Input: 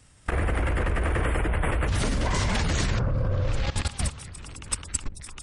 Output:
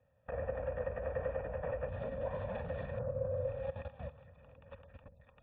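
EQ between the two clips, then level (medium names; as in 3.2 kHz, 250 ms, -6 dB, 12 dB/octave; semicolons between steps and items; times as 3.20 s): cascade formant filter e; high-pass 79 Hz 12 dB/octave; static phaser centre 860 Hz, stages 4; +6.5 dB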